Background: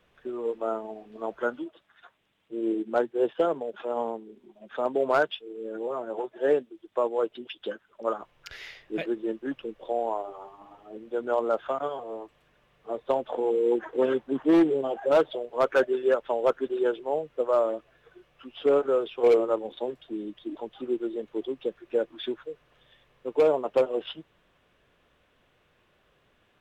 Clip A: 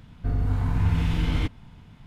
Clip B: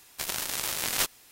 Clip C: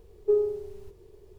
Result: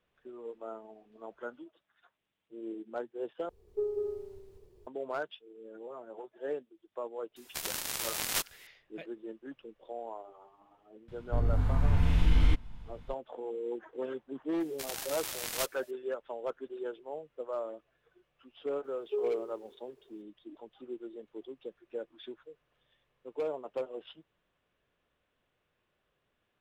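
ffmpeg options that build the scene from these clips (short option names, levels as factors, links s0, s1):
-filter_complex "[3:a]asplit=2[s0][s1];[2:a]asplit=2[s2][s3];[0:a]volume=0.224[s4];[s0]aecho=1:1:192.4|277:0.794|0.447[s5];[1:a]asubboost=boost=9:cutoff=52[s6];[s1]highpass=410[s7];[s4]asplit=2[s8][s9];[s8]atrim=end=3.494[s10];[s5]atrim=end=1.38,asetpts=PTS-STARTPTS,volume=0.316[s11];[s9]atrim=start=4.866[s12];[s2]atrim=end=1.31,asetpts=PTS-STARTPTS,volume=0.596,afade=t=in:d=0.004:c=hsin,afade=t=out:st=1.306:d=0.004:c=hsin,adelay=7360[s13];[s6]atrim=end=2.06,asetpts=PTS-STARTPTS,volume=0.596,afade=t=in:d=0.004:c=hsin,afade=t=out:st=2.056:d=0.004:c=hsin,adelay=11080[s14];[s3]atrim=end=1.31,asetpts=PTS-STARTPTS,volume=0.398,afade=t=in:d=0.004:c=hsin,afade=t=out:st=1.306:d=0.004:c=hsin,adelay=643860S[s15];[s7]atrim=end=1.38,asetpts=PTS-STARTPTS,volume=0.422,afade=t=in:d=0.004:c=hsin,afade=t=out:st=1.376:d=0.004:c=hsin,adelay=18840[s16];[s10][s11]acrossfade=d=0.004:c1=hsin:c2=hsin[s17];[s17][s12]acrossfade=d=0.004:c1=hsin:c2=hsin[s18];[s18][s13][s14][s15][s16]amix=inputs=5:normalize=0"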